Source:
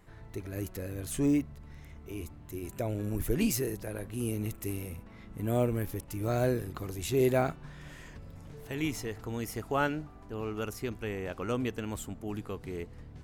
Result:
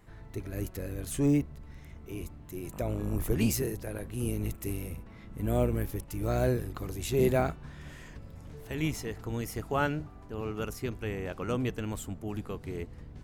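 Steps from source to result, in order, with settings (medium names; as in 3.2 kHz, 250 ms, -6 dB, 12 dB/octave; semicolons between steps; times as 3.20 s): octave divider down 1 oct, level -3 dB; 2.72–3.34 s: mains buzz 50 Hz, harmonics 26, -48 dBFS -3 dB/octave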